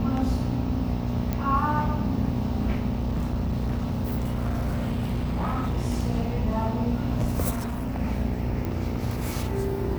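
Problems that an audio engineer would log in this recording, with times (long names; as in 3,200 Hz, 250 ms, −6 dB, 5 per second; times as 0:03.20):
mains buzz 60 Hz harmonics 15 −31 dBFS
0:01.33: click −14 dBFS
0:02.88–0:05.78: clipping −22.5 dBFS
0:07.50–0:08.00: clipping −25.5 dBFS
0:08.65: click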